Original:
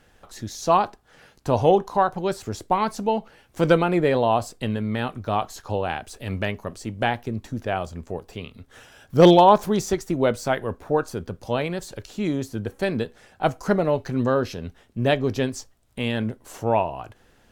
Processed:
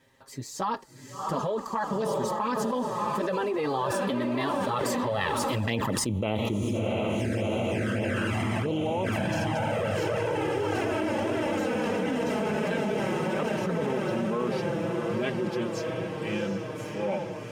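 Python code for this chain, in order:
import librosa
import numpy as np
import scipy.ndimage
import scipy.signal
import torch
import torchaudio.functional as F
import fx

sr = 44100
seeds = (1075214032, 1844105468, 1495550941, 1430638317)

p1 = fx.doppler_pass(x, sr, speed_mps=40, closest_m=2.5, pass_at_s=6.14)
p2 = fx.highpass(p1, sr, hz=62.0, slope=6)
p3 = p2 + fx.echo_diffused(p2, sr, ms=688, feedback_pct=72, wet_db=-7, dry=0)
p4 = fx.env_flanger(p3, sr, rest_ms=7.6, full_db=-39.5)
p5 = fx.notch_comb(p4, sr, f0_hz=720.0)
y = fx.env_flatten(p5, sr, amount_pct=100)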